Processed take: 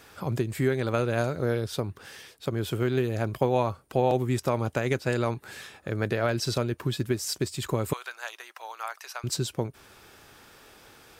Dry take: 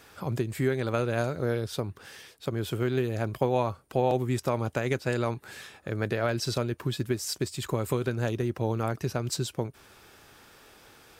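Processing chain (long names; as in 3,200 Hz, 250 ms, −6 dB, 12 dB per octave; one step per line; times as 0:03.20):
0:07.93–0:09.24: high-pass filter 870 Hz 24 dB per octave
level +1.5 dB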